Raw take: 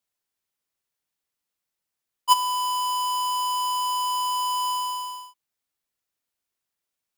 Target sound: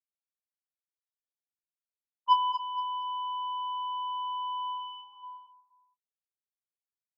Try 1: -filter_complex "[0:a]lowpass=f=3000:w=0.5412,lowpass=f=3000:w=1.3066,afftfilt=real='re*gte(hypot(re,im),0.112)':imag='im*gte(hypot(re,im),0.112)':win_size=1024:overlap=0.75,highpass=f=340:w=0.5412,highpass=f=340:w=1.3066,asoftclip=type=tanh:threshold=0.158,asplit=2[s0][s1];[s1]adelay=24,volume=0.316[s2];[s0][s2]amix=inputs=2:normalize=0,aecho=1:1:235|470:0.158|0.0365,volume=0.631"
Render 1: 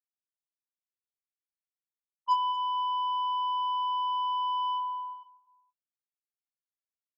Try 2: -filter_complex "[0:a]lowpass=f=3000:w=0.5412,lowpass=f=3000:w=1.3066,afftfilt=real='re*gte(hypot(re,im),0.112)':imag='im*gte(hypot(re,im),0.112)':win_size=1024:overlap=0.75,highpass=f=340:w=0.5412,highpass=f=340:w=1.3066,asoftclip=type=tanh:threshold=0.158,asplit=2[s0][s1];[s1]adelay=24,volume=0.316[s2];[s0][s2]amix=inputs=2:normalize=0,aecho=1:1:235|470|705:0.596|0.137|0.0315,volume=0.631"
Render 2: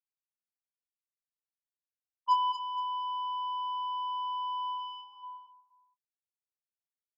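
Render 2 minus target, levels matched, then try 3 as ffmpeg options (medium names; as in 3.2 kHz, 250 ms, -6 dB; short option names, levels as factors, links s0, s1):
saturation: distortion +11 dB
-filter_complex "[0:a]lowpass=f=3000:w=0.5412,lowpass=f=3000:w=1.3066,afftfilt=real='re*gte(hypot(re,im),0.112)':imag='im*gte(hypot(re,im),0.112)':win_size=1024:overlap=0.75,highpass=f=340:w=0.5412,highpass=f=340:w=1.3066,asoftclip=type=tanh:threshold=0.422,asplit=2[s0][s1];[s1]adelay=24,volume=0.316[s2];[s0][s2]amix=inputs=2:normalize=0,aecho=1:1:235|470|705:0.596|0.137|0.0315,volume=0.631"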